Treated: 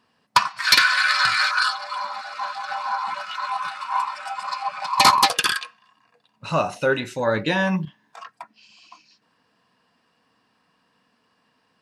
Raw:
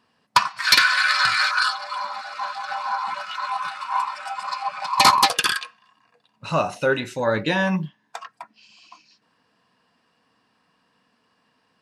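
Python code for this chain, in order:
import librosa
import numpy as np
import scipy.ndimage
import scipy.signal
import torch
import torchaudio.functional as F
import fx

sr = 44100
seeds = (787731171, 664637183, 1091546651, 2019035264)

y = fx.over_compress(x, sr, threshold_db=-39.0, ratio=-1.0, at=(7.85, 8.3))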